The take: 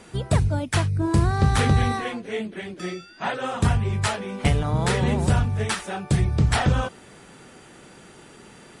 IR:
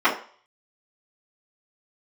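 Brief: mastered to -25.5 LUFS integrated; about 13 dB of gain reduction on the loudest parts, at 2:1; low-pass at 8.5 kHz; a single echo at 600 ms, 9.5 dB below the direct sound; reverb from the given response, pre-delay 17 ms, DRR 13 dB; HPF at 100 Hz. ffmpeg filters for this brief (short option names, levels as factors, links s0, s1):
-filter_complex "[0:a]highpass=100,lowpass=8500,acompressor=threshold=0.00891:ratio=2,aecho=1:1:600:0.335,asplit=2[s0][s1];[1:a]atrim=start_sample=2205,adelay=17[s2];[s1][s2]afir=irnorm=-1:irlink=0,volume=0.0211[s3];[s0][s3]amix=inputs=2:normalize=0,volume=3.35"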